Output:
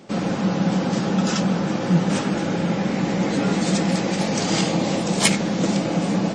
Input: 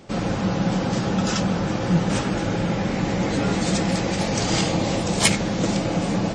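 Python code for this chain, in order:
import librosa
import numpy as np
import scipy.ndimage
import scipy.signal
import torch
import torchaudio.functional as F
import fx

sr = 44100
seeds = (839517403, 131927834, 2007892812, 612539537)

y = fx.low_shelf_res(x, sr, hz=120.0, db=-12.5, q=1.5)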